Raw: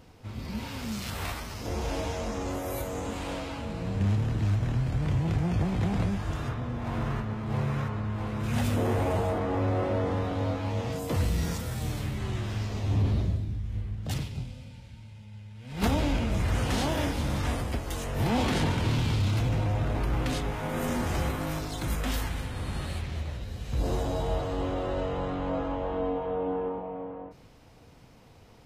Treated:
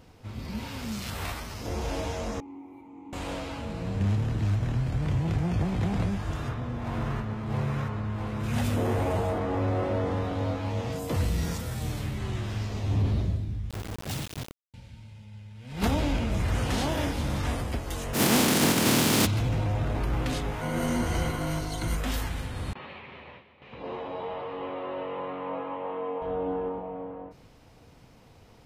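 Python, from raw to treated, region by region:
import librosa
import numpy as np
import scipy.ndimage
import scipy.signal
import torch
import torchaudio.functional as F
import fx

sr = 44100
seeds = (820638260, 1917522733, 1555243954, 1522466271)

y = fx.chain(x, sr, fx.overload_stage(gain_db=29.5),
    fx.vowel_filter(vowel='u'),
    fx.peak_eq(hz=4600.0, db=-8.0, octaves=2.2), at=(2.4, 3.13))
y = fx.chain(y, sr, fx.highpass(hz=120.0, slope=6),
    fx.notch(hz=1900.0, q=6.1),
    fx.quant_dither(seeds[0], bits=6, dither='none'), at=(13.7, 14.74))
y = fx.spec_flatten(y, sr, power=0.28, at=(18.13, 19.25), fade=0.02)
y = fx.highpass(y, sr, hz=92.0, slope=12, at=(18.13, 19.25), fade=0.02)
y = fx.peak_eq(y, sr, hz=230.0, db=13.5, octaves=1.9, at=(18.13, 19.25), fade=0.02)
y = fx.chain(y, sr, fx.cvsd(bps=64000),
    fx.ripple_eq(per_octave=1.9, db=9), at=(20.61, 21.97))
y = fx.chain(y, sr, fx.gate_hold(open_db=-26.0, close_db=-32.0, hold_ms=71.0, range_db=-21, attack_ms=1.4, release_ms=100.0),
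    fx.cabinet(low_hz=320.0, low_slope=12, high_hz=2900.0, hz=(320.0, 670.0, 1000.0, 1500.0, 2400.0), db=(-7, -6, 4, -6, 3)),
    fx.echo_single(ms=324, db=-11.5), at=(22.73, 26.22))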